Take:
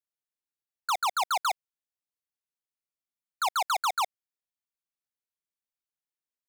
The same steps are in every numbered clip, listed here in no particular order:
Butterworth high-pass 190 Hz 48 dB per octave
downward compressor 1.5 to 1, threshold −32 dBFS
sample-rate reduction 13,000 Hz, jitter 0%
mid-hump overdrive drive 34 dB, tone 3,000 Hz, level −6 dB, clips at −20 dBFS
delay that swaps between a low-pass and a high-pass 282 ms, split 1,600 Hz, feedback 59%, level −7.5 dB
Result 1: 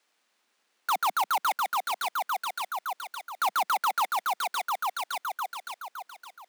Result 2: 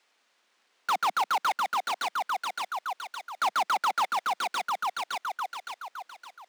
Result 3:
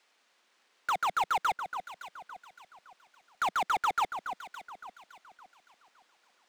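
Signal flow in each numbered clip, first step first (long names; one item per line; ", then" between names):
downward compressor, then delay that swaps between a low-pass and a high-pass, then mid-hump overdrive, then sample-rate reduction, then Butterworth high-pass
downward compressor, then delay that swaps between a low-pass and a high-pass, then sample-rate reduction, then mid-hump overdrive, then Butterworth high-pass
sample-rate reduction, then Butterworth high-pass, then mid-hump overdrive, then downward compressor, then delay that swaps between a low-pass and a high-pass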